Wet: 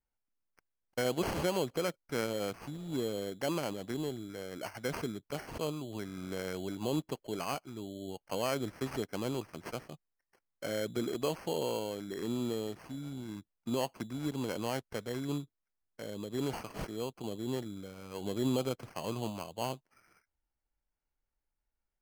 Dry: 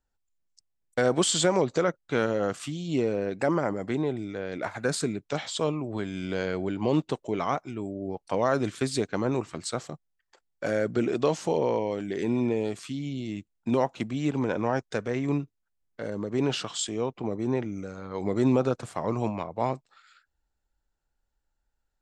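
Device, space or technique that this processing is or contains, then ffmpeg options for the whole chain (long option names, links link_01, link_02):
crushed at another speed: -af "asetrate=22050,aresample=44100,acrusher=samples=24:mix=1:aa=0.000001,asetrate=88200,aresample=44100,volume=-8.5dB"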